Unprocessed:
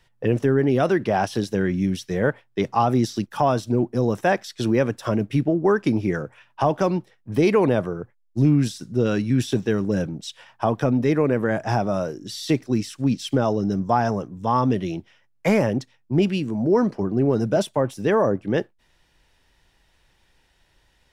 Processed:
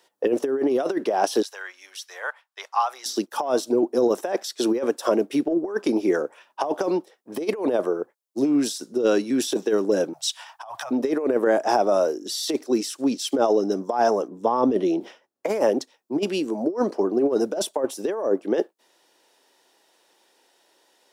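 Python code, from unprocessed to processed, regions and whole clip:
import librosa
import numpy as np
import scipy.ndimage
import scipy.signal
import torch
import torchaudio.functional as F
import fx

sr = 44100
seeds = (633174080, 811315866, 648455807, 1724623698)

y = fx.chain(x, sr, fx.highpass(hz=1000.0, slope=24),
    fx.high_shelf(hz=3500.0, db=-7.0), at=(1.42, 3.06))
y = fx.chain(y, sr, fx.cheby2_bandstop(low_hz=200.0, high_hz=430.0, order=4, stop_db=50),
    fx.over_compress(threshold_db=-32.0, ratio=-0.5), at=(10.13, 10.91))
y = fx.chain(y, sr, fx.tilt_eq(slope=-2.0),
    fx.sustainer(db_per_s=120.0), at=(14.28, 15.49))
y = scipy.signal.sosfilt(scipy.signal.butter(4, 330.0, 'highpass', fs=sr, output='sos'), y)
y = fx.peak_eq(y, sr, hz=2100.0, db=-10.0, octaves=1.7)
y = fx.over_compress(y, sr, threshold_db=-25.0, ratio=-0.5)
y = y * librosa.db_to_amplitude(5.5)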